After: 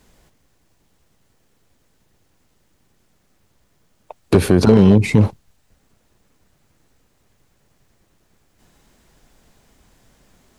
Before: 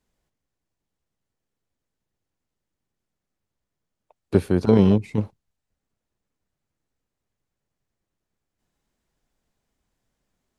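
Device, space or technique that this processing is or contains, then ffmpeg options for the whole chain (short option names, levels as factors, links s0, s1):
loud club master: -af "acompressor=threshold=0.1:ratio=2,asoftclip=type=hard:threshold=0.211,alimiter=level_in=15.8:limit=0.891:release=50:level=0:latency=1,volume=0.75"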